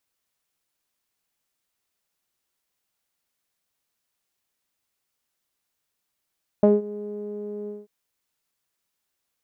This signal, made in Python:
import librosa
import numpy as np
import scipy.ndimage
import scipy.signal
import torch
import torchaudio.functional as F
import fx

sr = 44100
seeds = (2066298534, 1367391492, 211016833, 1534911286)

y = fx.sub_voice(sr, note=56, wave='saw', cutoff_hz=430.0, q=4.4, env_oct=0.5, env_s=0.1, attack_ms=1.9, decay_s=0.18, sustain_db=-22, release_s=0.19, note_s=1.05, slope=12)